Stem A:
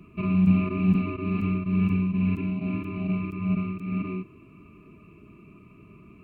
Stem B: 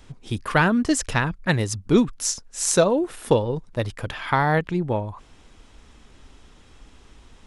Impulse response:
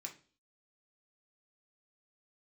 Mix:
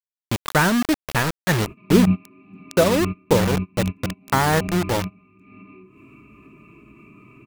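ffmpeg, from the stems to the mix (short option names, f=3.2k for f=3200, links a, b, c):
-filter_complex "[0:a]asubboost=boost=8.5:cutoff=58,acompressor=mode=upward:threshold=-28dB:ratio=2.5,adynamicequalizer=threshold=0.00282:dfrequency=2400:dqfactor=0.7:tfrequency=2400:tqfactor=0.7:attack=5:release=100:ratio=0.375:range=3:mode=cutabove:tftype=highshelf,adelay=1600,volume=2.5dB,asplit=2[a][b];[b]volume=-18dB[c];[1:a]lowpass=2.9k,acrusher=bits=3:mix=0:aa=0.000001,volume=0.5dB,asplit=2[d][e];[e]apad=whole_len=345515[f];[a][f]sidechaingate=range=-35dB:threshold=-30dB:ratio=16:detection=peak[g];[2:a]atrim=start_sample=2205[h];[c][h]afir=irnorm=-1:irlink=0[i];[g][d][i]amix=inputs=3:normalize=0,acompressor=mode=upward:threshold=-34dB:ratio=2.5"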